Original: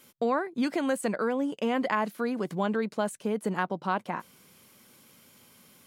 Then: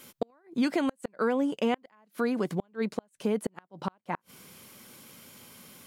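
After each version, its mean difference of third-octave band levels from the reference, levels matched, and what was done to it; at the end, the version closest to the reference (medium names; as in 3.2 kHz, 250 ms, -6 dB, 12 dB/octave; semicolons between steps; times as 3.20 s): 9.0 dB: inverted gate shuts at -18 dBFS, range -39 dB; in parallel at 0 dB: compression, threshold -40 dBFS, peak gain reduction 15 dB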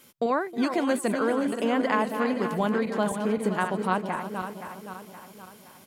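6.0 dB: backward echo that repeats 260 ms, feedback 67%, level -7.5 dB; on a send: delay 316 ms -16 dB; on the sum: trim +2 dB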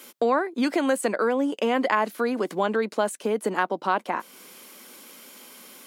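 3.5 dB: high-pass 250 Hz 24 dB/octave; in parallel at +3 dB: compression, threshold -41 dBFS, peak gain reduction 17.5 dB; on the sum: trim +3.5 dB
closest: third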